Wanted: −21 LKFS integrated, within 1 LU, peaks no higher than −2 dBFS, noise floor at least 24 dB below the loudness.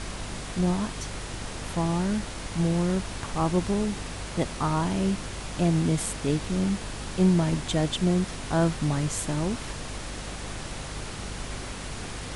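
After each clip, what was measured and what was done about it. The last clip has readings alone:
mains hum 50 Hz; hum harmonics up to 250 Hz; level of the hum −38 dBFS; background noise floor −37 dBFS; target noise floor −52 dBFS; integrated loudness −28.0 LKFS; sample peak −10.5 dBFS; target loudness −21.0 LKFS
→ mains-hum notches 50/100/150/200/250 Hz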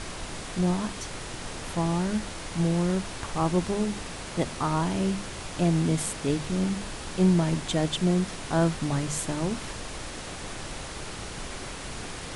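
mains hum none found; background noise floor −38 dBFS; target noise floor −53 dBFS
→ noise reduction from a noise print 15 dB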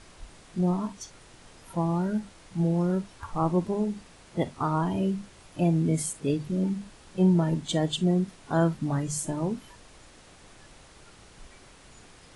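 background noise floor −53 dBFS; integrated loudness −28.0 LKFS; sample peak −12.0 dBFS; target loudness −21.0 LKFS
→ level +7 dB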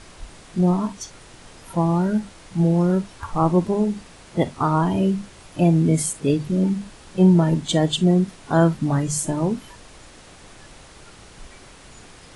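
integrated loudness −21.0 LKFS; sample peak −5.0 dBFS; background noise floor −46 dBFS

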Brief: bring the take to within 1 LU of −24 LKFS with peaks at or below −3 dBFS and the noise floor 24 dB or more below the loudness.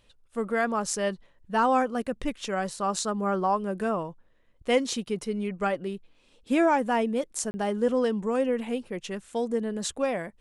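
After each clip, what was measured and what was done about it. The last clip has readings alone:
number of dropouts 1; longest dropout 30 ms; integrated loudness −28.0 LKFS; sample peak −11.0 dBFS; target loudness −24.0 LKFS
→ repair the gap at 0:07.51, 30 ms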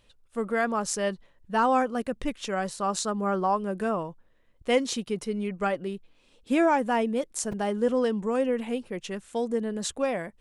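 number of dropouts 0; integrated loudness −28.0 LKFS; sample peak −11.0 dBFS; target loudness −24.0 LKFS
→ level +4 dB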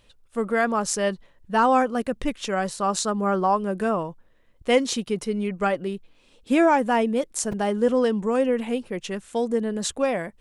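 integrated loudness −24.0 LKFS; sample peak −7.0 dBFS; background noise floor −59 dBFS

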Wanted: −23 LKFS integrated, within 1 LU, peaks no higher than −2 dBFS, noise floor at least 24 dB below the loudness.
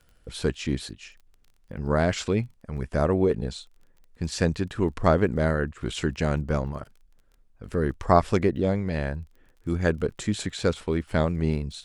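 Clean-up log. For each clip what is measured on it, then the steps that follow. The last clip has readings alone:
crackle rate 20 per second; integrated loudness −26.5 LKFS; sample peak −4.5 dBFS; target loudness −23.0 LKFS
→ click removal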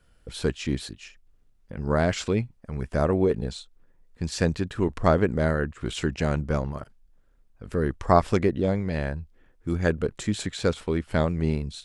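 crackle rate 0 per second; integrated loudness −26.5 LKFS; sample peak −4.5 dBFS; target loudness −23.0 LKFS
→ level +3.5 dB
brickwall limiter −2 dBFS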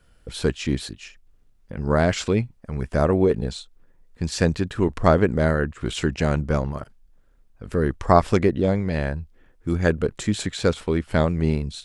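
integrated loudness −23.0 LKFS; sample peak −2.0 dBFS; background noise floor −57 dBFS

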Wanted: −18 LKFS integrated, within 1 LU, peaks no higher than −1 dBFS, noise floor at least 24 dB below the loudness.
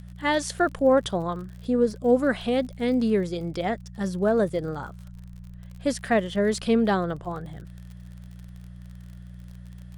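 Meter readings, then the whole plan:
crackle rate 46 per second; mains hum 60 Hz; hum harmonics up to 180 Hz; level of the hum −39 dBFS; integrated loudness −25.0 LKFS; sample peak −9.5 dBFS; target loudness −18.0 LKFS
→ click removal
hum removal 60 Hz, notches 3
level +7 dB

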